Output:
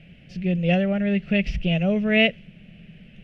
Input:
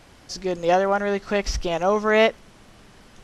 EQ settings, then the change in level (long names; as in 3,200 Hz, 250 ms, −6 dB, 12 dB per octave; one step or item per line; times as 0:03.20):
drawn EQ curve 110 Hz 0 dB, 170 Hz +15 dB, 300 Hz −7 dB, 640 Hz −4 dB, 980 Hz −28 dB, 1,700 Hz −6 dB, 2,700 Hz +7 dB, 4,100 Hz −15 dB, 6,600 Hz −25 dB, 11,000 Hz −23 dB
dynamic equaliser 4,900 Hz, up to +5 dB, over −39 dBFS, Q 0.83
0.0 dB